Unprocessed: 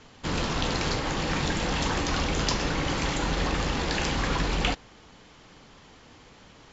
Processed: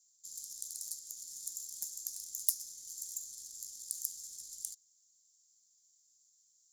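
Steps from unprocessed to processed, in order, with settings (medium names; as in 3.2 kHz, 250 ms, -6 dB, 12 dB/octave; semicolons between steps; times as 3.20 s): tracing distortion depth 0.082 ms; inverse Chebyshev high-pass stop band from 2.8 kHz, stop band 60 dB; saturation -10.5 dBFS, distortion -18 dB; trim +9 dB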